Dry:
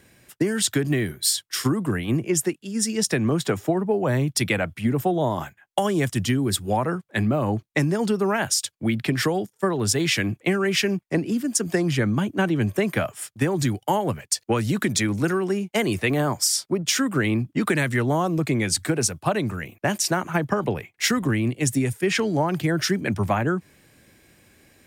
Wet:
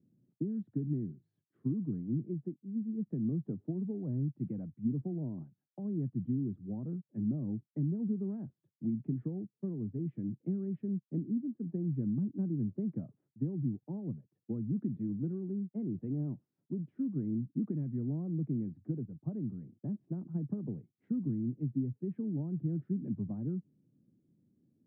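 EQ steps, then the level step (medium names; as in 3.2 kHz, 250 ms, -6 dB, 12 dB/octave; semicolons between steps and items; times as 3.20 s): Butterworth band-pass 190 Hz, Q 1.2; distance through air 340 m; -8.0 dB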